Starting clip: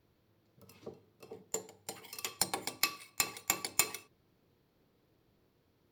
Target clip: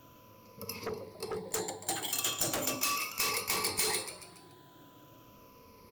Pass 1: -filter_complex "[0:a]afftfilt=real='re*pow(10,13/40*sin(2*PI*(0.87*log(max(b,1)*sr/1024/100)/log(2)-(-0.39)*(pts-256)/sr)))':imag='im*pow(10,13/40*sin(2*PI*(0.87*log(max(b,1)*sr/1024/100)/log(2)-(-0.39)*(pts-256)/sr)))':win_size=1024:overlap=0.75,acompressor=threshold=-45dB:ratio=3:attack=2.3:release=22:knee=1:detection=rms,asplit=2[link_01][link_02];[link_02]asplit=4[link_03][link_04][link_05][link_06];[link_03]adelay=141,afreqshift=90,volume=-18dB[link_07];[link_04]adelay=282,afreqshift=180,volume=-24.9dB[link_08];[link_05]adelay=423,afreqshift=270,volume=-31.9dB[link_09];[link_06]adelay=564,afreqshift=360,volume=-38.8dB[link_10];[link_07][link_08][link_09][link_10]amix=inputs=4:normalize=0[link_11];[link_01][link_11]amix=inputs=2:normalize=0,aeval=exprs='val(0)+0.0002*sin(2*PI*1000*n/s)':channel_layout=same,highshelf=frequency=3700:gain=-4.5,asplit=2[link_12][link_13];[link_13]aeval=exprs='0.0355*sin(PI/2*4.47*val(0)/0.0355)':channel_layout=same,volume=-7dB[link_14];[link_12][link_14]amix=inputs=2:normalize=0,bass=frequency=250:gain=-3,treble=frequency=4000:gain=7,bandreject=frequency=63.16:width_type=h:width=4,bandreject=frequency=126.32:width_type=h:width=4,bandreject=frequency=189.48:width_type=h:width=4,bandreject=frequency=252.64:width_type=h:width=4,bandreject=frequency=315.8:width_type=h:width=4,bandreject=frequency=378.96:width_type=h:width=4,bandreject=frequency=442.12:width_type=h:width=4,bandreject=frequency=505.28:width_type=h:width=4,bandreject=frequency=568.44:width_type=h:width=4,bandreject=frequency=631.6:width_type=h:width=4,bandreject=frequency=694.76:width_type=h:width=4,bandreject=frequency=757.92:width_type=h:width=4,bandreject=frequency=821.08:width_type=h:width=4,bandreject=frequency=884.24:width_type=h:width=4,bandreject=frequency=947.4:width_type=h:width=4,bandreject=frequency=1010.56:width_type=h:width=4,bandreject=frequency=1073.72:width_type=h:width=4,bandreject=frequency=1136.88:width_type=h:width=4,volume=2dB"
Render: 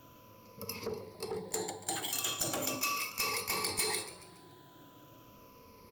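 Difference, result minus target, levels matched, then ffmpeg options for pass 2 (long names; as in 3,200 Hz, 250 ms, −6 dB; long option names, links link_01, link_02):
downward compressor: peak gain reduction +6.5 dB
-filter_complex "[0:a]afftfilt=real='re*pow(10,13/40*sin(2*PI*(0.87*log(max(b,1)*sr/1024/100)/log(2)-(-0.39)*(pts-256)/sr)))':imag='im*pow(10,13/40*sin(2*PI*(0.87*log(max(b,1)*sr/1024/100)/log(2)-(-0.39)*(pts-256)/sr)))':win_size=1024:overlap=0.75,acompressor=threshold=-35.5dB:ratio=3:attack=2.3:release=22:knee=1:detection=rms,asplit=2[link_01][link_02];[link_02]asplit=4[link_03][link_04][link_05][link_06];[link_03]adelay=141,afreqshift=90,volume=-18dB[link_07];[link_04]adelay=282,afreqshift=180,volume=-24.9dB[link_08];[link_05]adelay=423,afreqshift=270,volume=-31.9dB[link_09];[link_06]adelay=564,afreqshift=360,volume=-38.8dB[link_10];[link_07][link_08][link_09][link_10]amix=inputs=4:normalize=0[link_11];[link_01][link_11]amix=inputs=2:normalize=0,aeval=exprs='val(0)+0.0002*sin(2*PI*1000*n/s)':channel_layout=same,highshelf=frequency=3700:gain=-4.5,asplit=2[link_12][link_13];[link_13]aeval=exprs='0.0355*sin(PI/2*4.47*val(0)/0.0355)':channel_layout=same,volume=-7dB[link_14];[link_12][link_14]amix=inputs=2:normalize=0,bass=frequency=250:gain=-3,treble=frequency=4000:gain=7,bandreject=frequency=63.16:width_type=h:width=4,bandreject=frequency=126.32:width_type=h:width=4,bandreject=frequency=189.48:width_type=h:width=4,bandreject=frequency=252.64:width_type=h:width=4,bandreject=frequency=315.8:width_type=h:width=4,bandreject=frequency=378.96:width_type=h:width=4,bandreject=frequency=442.12:width_type=h:width=4,bandreject=frequency=505.28:width_type=h:width=4,bandreject=frequency=568.44:width_type=h:width=4,bandreject=frequency=631.6:width_type=h:width=4,bandreject=frequency=694.76:width_type=h:width=4,bandreject=frequency=757.92:width_type=h:width=4,bandreject=frequency=821.08:width_type=h:width=4,bandreject=frequency=884.24:width_type=h:width=4,bandreject=frequency=947.4:width_type=h:width=4,bandreject=frequency=1010.56:width_type=h:width=4,bandreject=frequency=1073.72:width_type=h:width=4,bandreject=frequency=1136.88:width_type=h:width=4,volume=2dB"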